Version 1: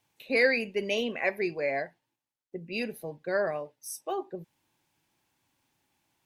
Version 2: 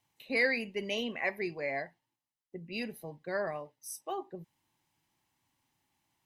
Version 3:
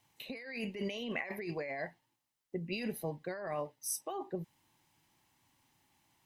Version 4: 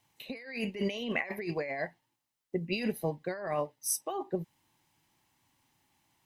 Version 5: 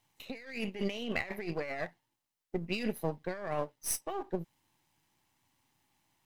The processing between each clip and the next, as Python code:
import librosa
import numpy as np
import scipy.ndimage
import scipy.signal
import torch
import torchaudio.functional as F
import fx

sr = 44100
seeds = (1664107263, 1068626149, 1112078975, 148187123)

y1 = x + 0.31 * np.pad(x, (int(1.0 * sr / 1000.0), 0))[:len(x)]
y1 = y1 * 10.0 ** (-4.0 / 20.0)
y2 = fx.over_compress(y1, sr, threshold_db=-40.0, ratio=-1.0)
y2 = y2 * 10.0 ** (1.0 / 20.0)
y3 = fx.upward_expand(y2, sr, threshold_db=-47.0, expansion=1.5)
y3 = y3 * 10.0 ** (6.5 / 20.0)
y4 = np.where(y3 < 0.0, 10.0 ** (-7.0 / 20.0) * y3, y3)